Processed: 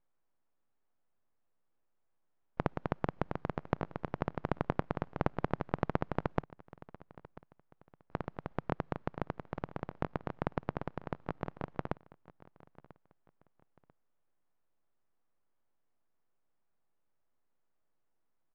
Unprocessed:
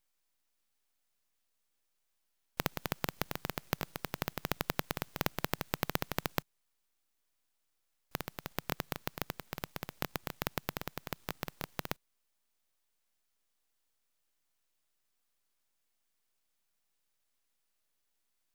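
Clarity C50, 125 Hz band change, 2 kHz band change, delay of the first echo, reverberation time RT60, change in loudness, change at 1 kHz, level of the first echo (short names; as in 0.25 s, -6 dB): none, +4.5 dB, -4.5 dB, 0.992 s, none, +0.5 dB, +2.5 dB, -20.0 dB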